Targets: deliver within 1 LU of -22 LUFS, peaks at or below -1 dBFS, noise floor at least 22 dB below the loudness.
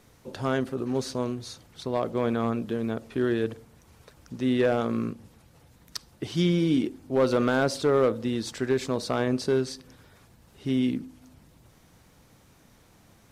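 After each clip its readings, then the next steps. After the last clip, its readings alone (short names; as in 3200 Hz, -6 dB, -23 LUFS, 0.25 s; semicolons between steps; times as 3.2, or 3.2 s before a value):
clipped 0.4%; flat tops at -15.5 dBFS; loudness -27.0 LUFS; peak -15.5 dBFS; loudness target -22.0 LUFS
-> clip repair -15.5 dBFS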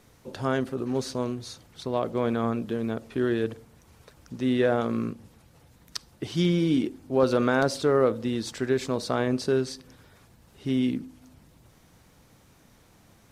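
clipped 0.0%; loudness -27.0 LUFS; peak -9.0 dBFS; loudness target -22.0 LUFS
-> gain +5 dB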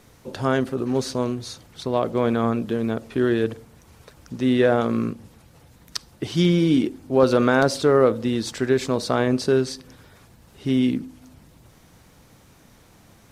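loudness -22.0 LUFS; peak -4.0 dBFS; noise floor -53 dBFS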